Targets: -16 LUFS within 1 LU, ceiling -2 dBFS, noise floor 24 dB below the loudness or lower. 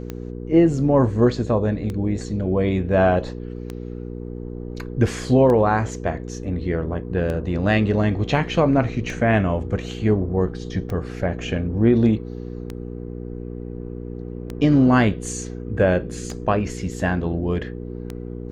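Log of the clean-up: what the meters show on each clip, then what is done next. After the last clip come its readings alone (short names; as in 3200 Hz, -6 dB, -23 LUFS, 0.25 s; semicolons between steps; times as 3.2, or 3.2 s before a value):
clicks 11; hum 60 Hz; harmonics up to 480 Hz; hum level -29 dBFS; loudness -21.0 LUFS; peak -6.0 dBFS; loudness target -16.0 LUFS
-> de-click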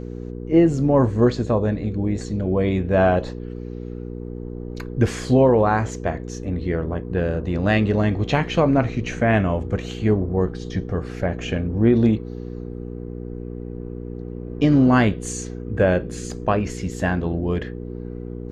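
clicks 0; hum 60 Hz; harmonics up to 480 Hz; hum level -29 dBFS
-> de-hum 60 Hz, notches 8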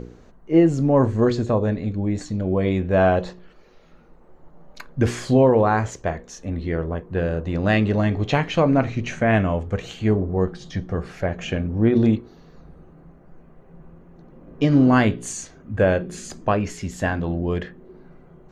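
hum none; loudness -21.5 LUFS; peak -6.0 dBFS; loudness target -16.0 LUFS
-> gain +5.5 dB; limiter -2 dBFS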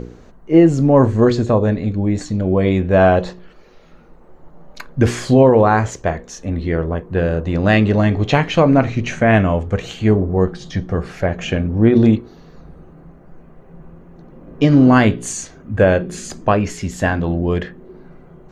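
loudness -16.0 LUFS; peak -2.0 dBFS; noise floor -44 dBFS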